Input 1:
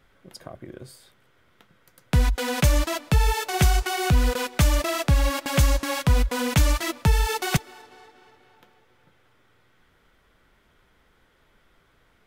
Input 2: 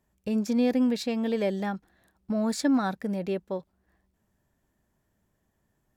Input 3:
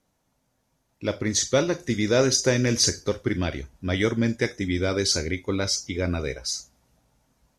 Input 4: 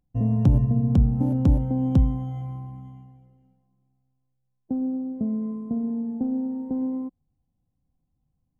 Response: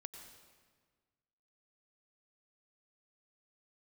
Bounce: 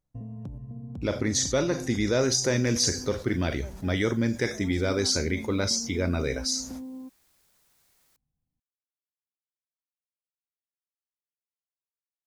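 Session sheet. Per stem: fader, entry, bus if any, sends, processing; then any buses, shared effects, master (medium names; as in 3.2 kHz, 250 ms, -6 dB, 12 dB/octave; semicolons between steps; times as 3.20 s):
mute
-18.5 dB, 2.20 s, no send, word length cut 8-bit, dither triangular
-5.0 dB, 0.00 s, no send, gate -54 dBFS, range -54 dB; level flattener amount 50%
-9.0 dB, 0.00 s, no send, compression 8:1, threshold -27 dBFS, peak gain reduction 14.5 dB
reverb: none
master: peaking EQ 2.9 kHz -3.5 dB 0.45 oct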